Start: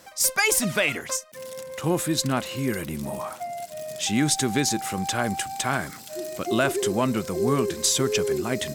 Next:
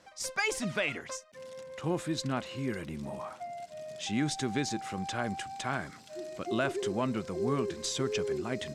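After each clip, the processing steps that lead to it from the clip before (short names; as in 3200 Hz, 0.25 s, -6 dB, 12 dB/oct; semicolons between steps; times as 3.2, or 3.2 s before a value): air absorption 80 m; gain -7.5 dB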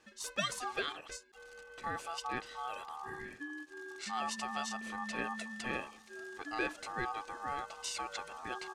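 comb 1.3 ms, depth 98%; ring modulator 1000 Hz; ending taper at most 330 dB/s; gain -5.5 dB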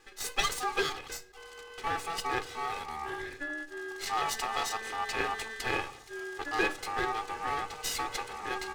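minimum comb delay 2.4 ms; on a send at -12 dB: reverb RT60 0.60 s, pre-delay 3 ms; on the sum: gain +7 dB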